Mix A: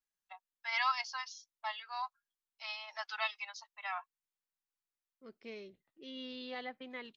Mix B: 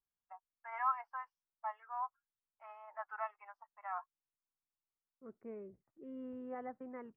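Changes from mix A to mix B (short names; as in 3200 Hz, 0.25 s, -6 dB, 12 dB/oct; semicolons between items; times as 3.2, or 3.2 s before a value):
second voice: add bell 82 Hz +13.5 dB 1.1 oct; master: add inverse Chebyshev low-pass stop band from 3600 Hz, stop band 50 dB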